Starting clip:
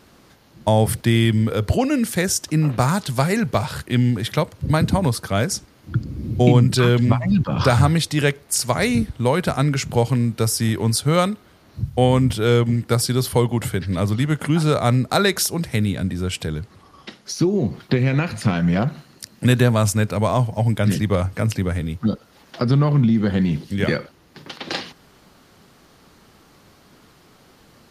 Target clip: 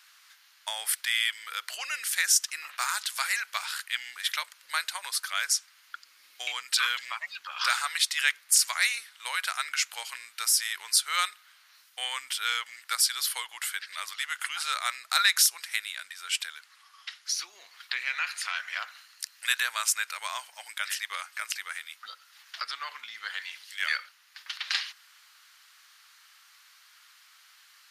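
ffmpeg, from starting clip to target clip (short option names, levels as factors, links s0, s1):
-af "highpass=f=1400:w=0.5412,highpass=f=1400:w=1.3066"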